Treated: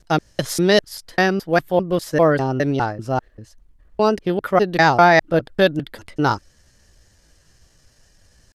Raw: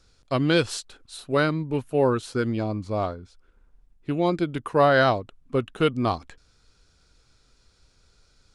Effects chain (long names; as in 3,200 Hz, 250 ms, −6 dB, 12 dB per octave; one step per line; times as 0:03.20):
slices reordered back to front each 200 ms, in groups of 2
pitch shifter +3.5 semitones
level +6 dB